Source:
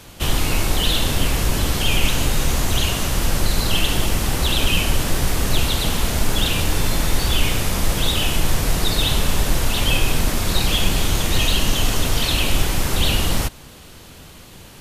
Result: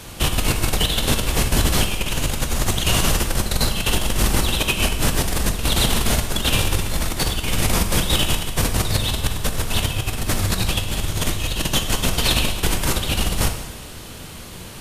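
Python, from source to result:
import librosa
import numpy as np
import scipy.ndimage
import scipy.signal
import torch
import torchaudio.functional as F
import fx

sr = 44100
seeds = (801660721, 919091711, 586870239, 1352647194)

y = fx.peak_eq(x, sr, hz=100.0, db=10.0, octaves=0.3, at=(8.73, 11.54))
y = fx.over_compress(y, sr, threshold_db=-20.0, ratio=-0.5)
y = fx.peak_eq(y, sr, hz=9200.0, db=3.5, octaves=0.28)
y = fx.rev_plate(y, sr, seeds[0], rt60_s=1.2, hf_ratio=1.0, predelay_ms=0, drr_db=5.5)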